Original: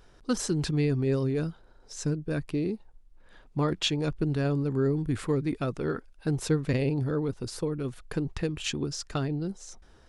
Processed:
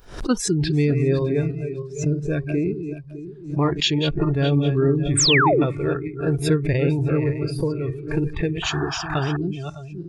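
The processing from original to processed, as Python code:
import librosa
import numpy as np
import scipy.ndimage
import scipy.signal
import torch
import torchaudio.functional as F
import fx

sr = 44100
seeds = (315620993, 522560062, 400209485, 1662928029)

y = fx.reverse_delay_fb(x, sr, ms=304, feedback_pct=58, wet_db=-7.0)
y = fx.spec_paint(y, sr, seeds[0], shape='fall', start_s=5.17, length_s=0.48, low_hz=220.0, high_hz=9200.0, level_db=-24.0)
y = fx.noise_reduce_blind(y, sr, reduce_db=20)
y = fx.spec_paint(y, sr, seeds[1], shape='noise', start_s=8.62, length_s=0.75, low_hz=640.0, high_hz=1800.0, level_db=-39.0)
y = fx.pre_swell(y, sr, db_per_s=120.0)
y = y * 10.0 ** (6.5 / 20.0)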